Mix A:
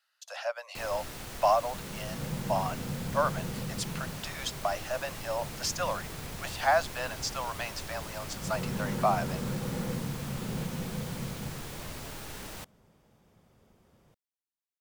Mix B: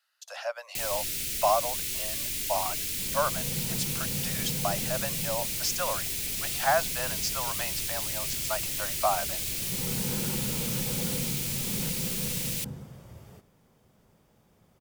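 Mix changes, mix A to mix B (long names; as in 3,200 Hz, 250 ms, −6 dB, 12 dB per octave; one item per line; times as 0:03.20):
first sound: add drawn EQ curve 410 Hz 0 dB, 930 Hz −21 dB, 2,300 Hz +8 dB, 10,000 Hz +12 dB
second sound: entry +1.25 s
master: add high-shelf EQ 7,600 Hz +5 dB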